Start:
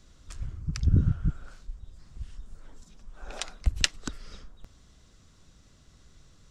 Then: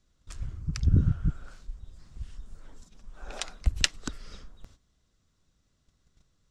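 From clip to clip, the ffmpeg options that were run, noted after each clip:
-af "agate=range=-14dB:threshold=-50dB:ratio=16:detection=peak"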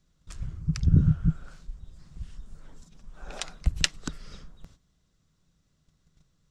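-af "equalizer=f=160:t=o:w=0.39:g=9.5"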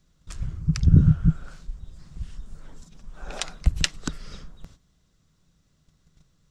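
-af "alimiter=level_in=4.5dB:limit=-1dB:release=50:level=0:latency=1"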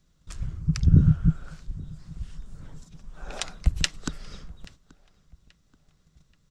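-filter_complex "[0:a]asplit=2[a][b];[b]adelay=831,lowpass=f=3.9k:p=1,volume=-23dB,asplit=2[c][d];[d]adelay=831,lowpass=f=3.9k:p=1,volume=0.43,asplit=2[e][f];[f]adelay=831,lowpass=f=3.9k:p=1,volume=0.43[g];[a][c][e][g]amix=inputs=4:normalize=0,volume=-1.5dB"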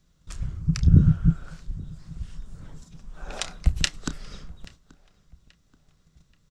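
-filter_complex "[0:a]asplit=2[a][b];[b]adelay=30,volume=-13dB[c];[a][c]amix=inputs=2:normalize=0,volume=1dB"

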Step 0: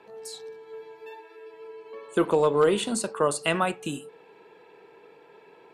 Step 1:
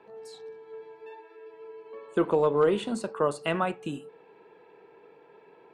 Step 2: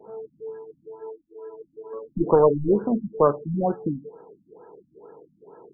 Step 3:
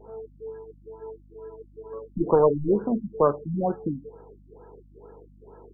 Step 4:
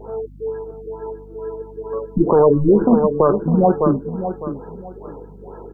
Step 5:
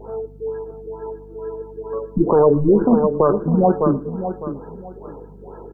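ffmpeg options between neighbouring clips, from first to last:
-af "lowpass=f=1.9k:p=1,volume=-1.5dB"
-af "aeval=exprs='clip(val(0),-1,0.0891)':c=same,afftfilt=real='re*lt(b*sr/1024,270*pow(1700/270,0.5+0.5*sin(2*PI*2.2*pts/sr)))':imag='im*lt(b*sr/1024,270*pow(1700/270,0.5+0.5*sin(2*PI*2.2*pts/sr)))':win_size=1024:overlap=0.75,volume=8dB"
-af "aeval=exprs='val(0)+0.00316*(sin(2*PI*50*n/s)+sin(2*PI*2*50*n/s)/2+sin(2*PI*3*50*n/s)/3+sin(2*PI*4*50*n/s)/4+sin(2*PI*5*50*n/s)/5)':c=same,volume=-2dB"
-af "aecho=1:1:605|1210|1815:0.282|0.0733|0.0191,alimiter=level_in=15dB:limit=-1dB:release=50:level=0:latency=1,volume=-3dB"
-af "aecho=1:1:113|226:0.0841|0.0236,volume=-1dB"

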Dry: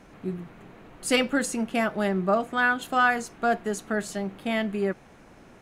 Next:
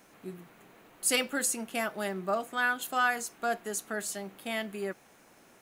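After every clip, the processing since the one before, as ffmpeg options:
-af "aemphasis=mode=production:type=bsi,volume=-6dB"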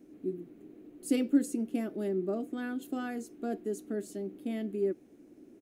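-af "firequalizer=gain_entry='entry(180,0);entry(300,15);entry(500,-3);entry(940,-19);entry(2200,-15)':delay=0.05:min_phase=1"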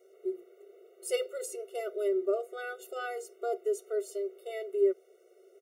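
-af "afftfilt=real='re*eq(mod(floor(b*sr/1024/380),2),1)':imag='im*eq(mod(floor(b*sr/1024/380),2),1)':win_size=1024:overlap=0.75,volume=5.5dB"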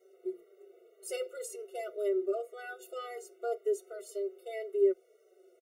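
-filter_complex "[0:a]asplit=2[a][b];[b]adelay=4.7,afreqshift=-1.9[c];[a][c]amix=inputs=2:normalize=1"

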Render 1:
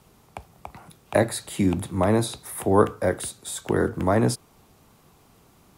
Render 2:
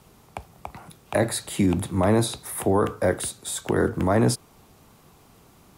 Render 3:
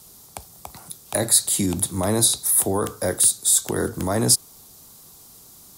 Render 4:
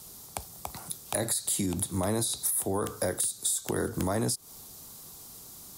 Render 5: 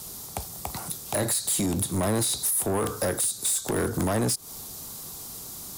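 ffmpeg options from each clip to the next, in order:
-af "alimiter=limit=-14.5dB:level=0:latency=1:release=20,volume=2.5dB"
-af "aexciter=amount=4.3:drive=7.4:freq=3.7k,volume=-2.5dB"
-af "alimiter=limit=-11dB:level=0:latency=1:release=170,acompressor=threshold=-26dB:ratio=6"
-af "asoftclip=type=tanh:threshold=-29dB,volume=8dB"

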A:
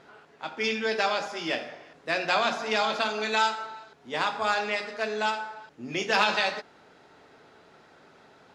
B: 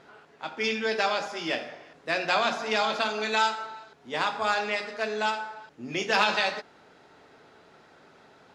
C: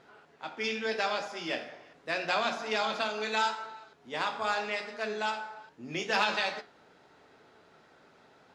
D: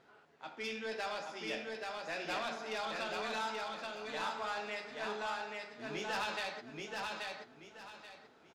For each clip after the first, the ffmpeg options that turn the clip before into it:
-af anull
-af "flanger=delay=7.9:depth=9.9:regen=77:speed=0.8:shape=triangular"
-af "asoftclip=type=tanh:threshold=-25.5dB,aecho=1:1:831|1662|2493|3324:0.708|0.198|0.0555|0.0155,volume=-6.5dB"

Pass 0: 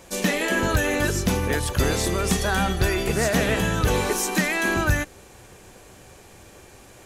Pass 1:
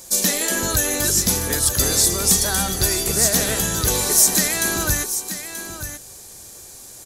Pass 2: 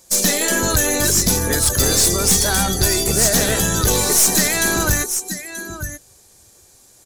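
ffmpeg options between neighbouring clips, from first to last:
-filter_complex "[0:a]aexciter=amount=5.3:drive=5.7:freq=3.9k,asplit=2[a][b];[b]aecho=0:1:932:0.299[c];[a][c]amix=inputs=2:normalize=0,volume=-2.5dB"
-af "afftdn=nr=14:nf=-32,highshelf=f=9.2k:g=-5,aeval=exprs='(tanh(6.31*val(0)+0.35)-tanh(0.35))/6.31':c=same,volume=7dB"

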